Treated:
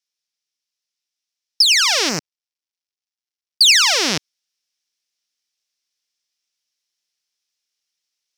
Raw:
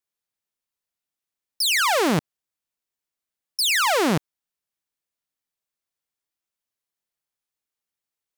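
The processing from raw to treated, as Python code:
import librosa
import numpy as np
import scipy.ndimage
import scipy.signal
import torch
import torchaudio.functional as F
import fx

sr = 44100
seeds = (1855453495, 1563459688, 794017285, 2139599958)

y = fx.dead_time(x, sr, dead_ms=0.14, at=(2.09, 3.61))
y = fx.weighting(y, sr, curve='D')
y = fx.rider(y, sr, range_db=10, speed_s=0.5)
y = fx.peak_eq(y, sr, hz=5500.0, db=12.0, octaves=0.54)
y = y * 10.0 ** (-4.0 / 20.0)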